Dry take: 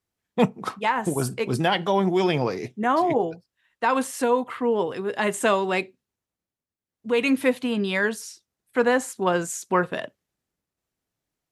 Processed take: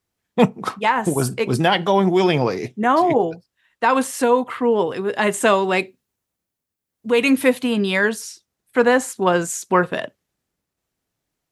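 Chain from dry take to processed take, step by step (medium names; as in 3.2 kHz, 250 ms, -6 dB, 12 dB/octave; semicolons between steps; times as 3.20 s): 5.79–7.96 s: treble shelf 9.2 kHz +7.5 dB; trim +5 dB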